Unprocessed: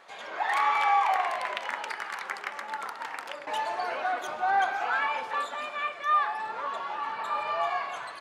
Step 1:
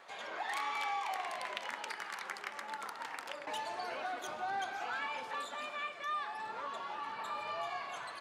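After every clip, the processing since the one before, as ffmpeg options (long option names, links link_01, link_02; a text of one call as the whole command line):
ffmpeg -i in.wav -filter_complex "[0:a]acrossover=split=360|3000[link_01][link_02][link_03];[link_02]acompressor=threshold=-40dB:ratio=2.5[link_04];[link_01][link_04][link_03]amix=inputs=3:normalize=0,volume=-2.5dB" out.wav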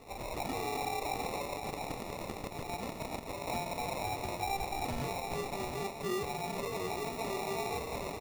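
ffmpeg -i in.wav -af "acrusher=samples=28:mix=1:aa=0.000001,alimiter=level_in=8.5dB:limit=-24dB:level=0:latency=1:release=105,volume=-8.5dB,aecho=1:1:713:0.422,volume=4dB" out.wav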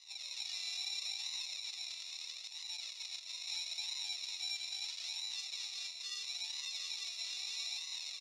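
ffmpeg -i in.wav -filter_complex "[0:a]flanger=delay=1:depth=2:regen=28:speed=0.76:shape=sinusoidal,asplit=2[link_01][link_02];[link_02]aeval=exprs='0.0126*(abs(mod(val(0)/0.0126+3,4)-2)-1)':channel_layout=same,volume=-5dB[link_03];[link_01][link_03]amix=inputs=2:normalize=0,asuperpass=centerf=4600:order=4:qfactor=1.7,volume=10dB" out.wav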